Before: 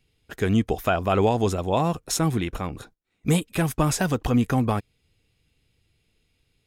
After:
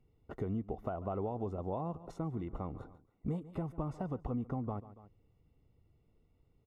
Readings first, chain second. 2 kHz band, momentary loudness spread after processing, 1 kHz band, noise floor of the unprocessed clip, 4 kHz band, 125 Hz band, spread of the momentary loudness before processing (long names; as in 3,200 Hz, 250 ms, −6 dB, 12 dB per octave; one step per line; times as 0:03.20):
−28.0 dB, 7 LU, −16.0 dB, −72 dBFS, below −30 dB, −14.5 dB, 9 LU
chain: repeating echo 141 ms, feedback 33%, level −21 dB
downward compressor 4 to 1, threshold −37 dBFS, peak gain reduction 17.5 dB
Savitzky-Golay smoothing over 65 samples